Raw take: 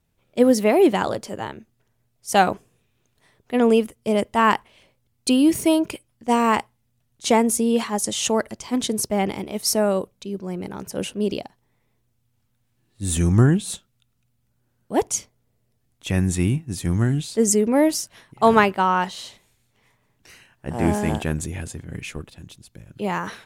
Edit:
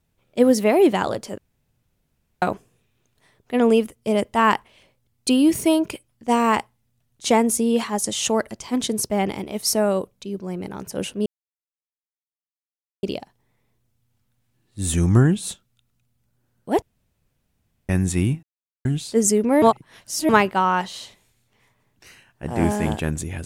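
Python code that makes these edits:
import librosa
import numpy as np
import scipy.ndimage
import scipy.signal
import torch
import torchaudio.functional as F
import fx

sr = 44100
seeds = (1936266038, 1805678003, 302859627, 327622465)

y = fx.edit(x, sr, fx.room_tone_fill(start_s=1.38, length_s=1.04),
    fx.insert_silence(at_s=11.26, length_s=1.77),
    fx.room_tone_fill(start_s=15.05, length_s=1.07),
    fx.silence(start_s=16.66, length_s=0.42),
    fx.reverse_span(start_s=17.85, length_s=0.67), tone=tone)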